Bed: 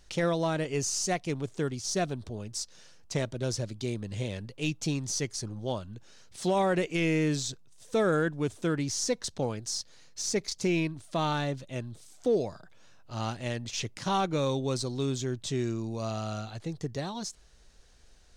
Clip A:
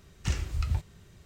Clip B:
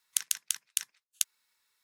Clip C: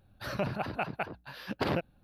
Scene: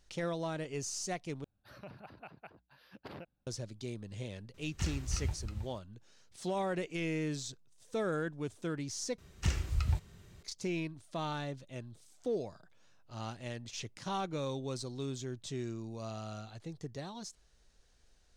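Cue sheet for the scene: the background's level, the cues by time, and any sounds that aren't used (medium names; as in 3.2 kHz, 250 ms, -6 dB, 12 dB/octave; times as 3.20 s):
bed -8.5 dB
1.44 s: replace with C -17.5 dB
4.54 s: add A -6 dB + delay 319 ms -7 dB
9.18 s: replace with A -2 dB
not used: B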